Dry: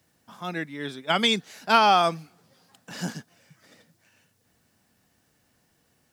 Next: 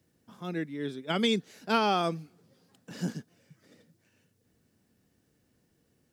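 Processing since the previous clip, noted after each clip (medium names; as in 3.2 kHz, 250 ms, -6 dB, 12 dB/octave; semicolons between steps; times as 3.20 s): resonant low shelf 570 Hz +7 dB, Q 1.5; trim -8 dB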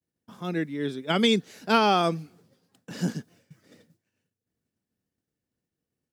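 expander -57 dBFS; trim +5 dB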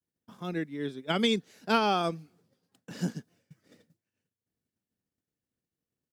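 transient shaper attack +2 dB, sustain -4 dB; trim -5 dB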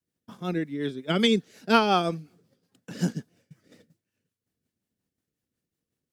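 rotary cabinet horn 5.5 Hz; trim +6.5 dB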